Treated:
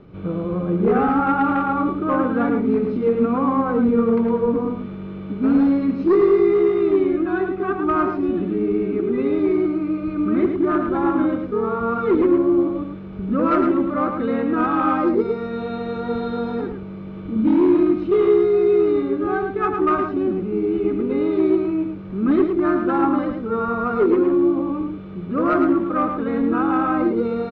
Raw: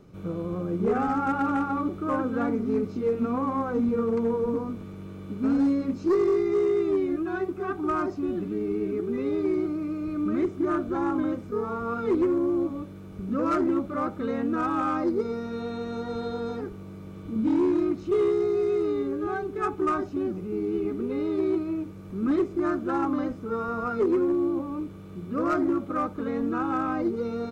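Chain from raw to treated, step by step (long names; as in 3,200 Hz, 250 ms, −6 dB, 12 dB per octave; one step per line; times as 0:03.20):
low-pass filter 3,600 Hz 24 dB per octave
single-tap delay 109 ms −6 dB
level +6.5 dB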